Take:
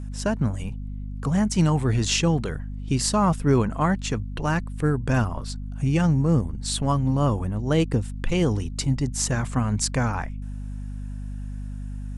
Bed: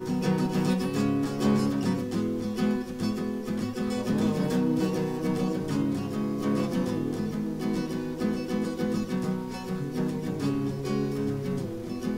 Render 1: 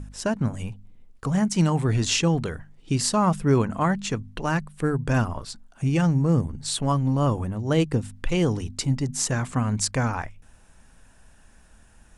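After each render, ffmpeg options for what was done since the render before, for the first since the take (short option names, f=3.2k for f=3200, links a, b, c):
-af "bandreject=f=50:t=h:w=4,bandreject=f=100:t=h:w=4,bandreject=f=150:t=h:w=4,bandreject=f=200:t=h:w=4,bandreject=f=250:t=h:w=4"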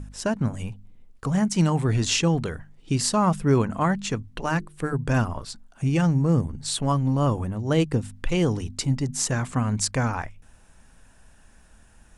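-filter_complex "[0:a]asettb=1/sr,asplit=3[a][b][c];[a]atrim=end=4.214[d];[b]atrim=start=4.21:end=4.93,asetpts=PTS-STARTPTS,afade=t=in:d=0.004:c=qsin,afade=t=out:st=0.716:d=0.004:c=qsin,bandreject=f=50:t=h:w=6,bandreject=f=100:t=h:w=6,bandreject=f=150:t=h:w=6,bandreject=f=200:t=h:w=6,bandreject=f=250:t=h:w=6,bandreject=f=300:t=h:w=6,bandreject=f=350:t=h:w=6,bandreject=f=400:t=h:w=6,bandreject=f=450:t=h:w=6[e];[c]atrim=start=4.926[f];[d][e]acrossfade=d=0.004:c1=hsin:c2=qsin[g];[g][f]acrossfade=d=0.004:c1=qsin:c2=hsin"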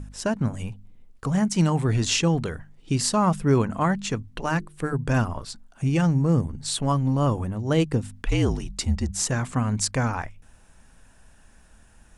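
-filter_complex "[0:a]asettb=1/sr,asplit=3[a][b][c];[a]atrim=end=8.224[d];[b]atrim=start=8.22:end=9.22,asetpts=PTS-STARTPTS,afade=t=in:d=0.004:c=qsin,afade=t=out:st=0.996:d=0.004:c=qsin,afreqshift=-53[e];[c]atrim=start=9.216[f];[d][e]acrossfade=d=0.004:c1=hsin:c2=qsin[g];[g][f]acrossfade=d=0.004:c1=qsin:c2=hsin"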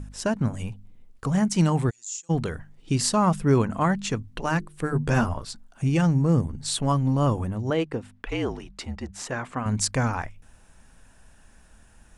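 -filter_complex "[0:a]asplit=3[a][b][c];[a]afade=t=out:st=1.89:d=0.02[d];[b]bandpass=f=7.1k:t=q:w=11,afade=t=in:st=1.89:d=0.02,afade=t=out:st=2.29:d=0.02[e];[c]afade=t=in:st=2.29:d=0.02[f];[d][e][f]amix=inputs=3:normalize=0,asettb=1/sr,asplit=3[g][h][i];[g]atrim=end=4.944[j];[h]atrim=start=4.94:end=5.34,asetpts=PTS-STARTPTS,afade=t=in:d=0.004:c=qsin,afade=t=out:st=0.396:d=0.004:c=qsin,asplit=2[k][l];[l]adelay=13,volume=-2.5dB[m];[k][m]amix=inputs=2:normalize=0,atrim=end_sample=17640[n];[i]atrim=start=5.336[o];[j][n]acrossfade=d=0.004:c1=hsin:c2=qsin[p];[p][o]acrossfade=d=0.004:c1=qsin:c2=hsin,asettb=1/sr,asplit=3[q][r][s];[q]atrim=end=7.704[t];[r]atrim=start=7.7:end=9.66,asetpts=PTS-STARTPTS,afade=t=in:d=0.004:c=qsin,afade=t=out:st=1.956:d=0.004:c=qsin,bass=f=250:g=-12,treble=f=4k:g=-13[u];[s]atrim=start=9.656[v];[t][u]acrossfade=d=0.004:c1=hsin:c2=qsin[w];[w][v]acrossfade=d=0.004:c1=qsin:c2=hsin"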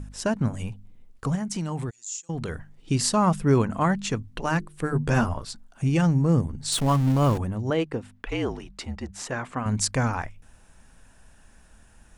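-filter_complex "[0:a]asplit=3[a][b][c];[a]afade=t=out:st=1.34:d=0.02[d];[b]acompressor=threshold=-27dB:ratio=4:attack=3.2:release=140:knee=1:detection=peak,afade=t=in:st=1.34:d=0.02,afade=t=out:st=2.48:d=0.02[e];[c]afade=t=in:st=2.48:d=0.02[f];[d][e][f]amix=inputs=3:normalize=0,asettb=1/sr,asplit=3[g][h][i];[g]atrim=end=6.724[j];[h]atrim=start=6.72:end=7.38,asetpts=PTS-STARTPTS,afade=t=in:d=0.004:c=qsin,afade=t=out:st=0.656:d=0.004:c=qsin,aeval=exprs='val(0)+0.5*0.0355*sgn(val(0))':c=same[k];[i]atrim=start=7.376[l];[j][k]acrossfade=d=0.004:c1=hsin:c2=qsin[m];[m][l]acrossfade=d=0.004:c1=qsin:c2=hsin"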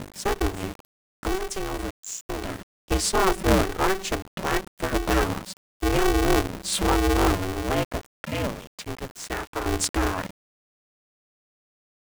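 -af "aeval=exprs='val(0)*gte(abs(val(0)),0.0119)':c=same,aeval=exprs='val(0)*sgn(sin(2*PI*190*n/s))':c=same"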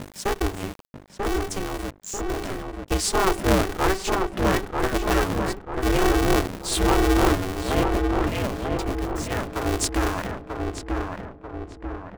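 -filter_complex "[0:a]asplit=2[a][b];[b]adelay=940,lowpass=f=1.7k:p=1,volume=-3dB,asplit=2[c][d];[d]adelay=940,lowpass=f=1.7k:p=1,volume=0.54,asplit=2[e][f];[f]adelay=940,lowpass=f=1.7k:p=1,volume=0.54,asplit=2[g][h];[h]adelay=940,lowpass=f=1.7k:p=1,volume=0.54,asplit=2[i][j];[j]adelay=940,lowpass=f=1.7k:p=1,volume=0.54,asplit=2[k][l];[l]adelay=940,lowpass=f=1.7k:p=1,volume=0.54,asplit=2[m][n];[n]adelay=940,lowpass=f=1.7k:p=1,volume=0.54[o];[a][c][e][g][i][k][m][o]amix=inputs=8:normalize=0"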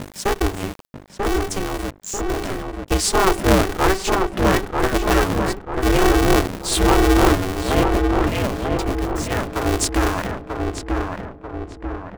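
-af "volume=4.5dB,alimiter=limit=-2dB:level=0:latency=1"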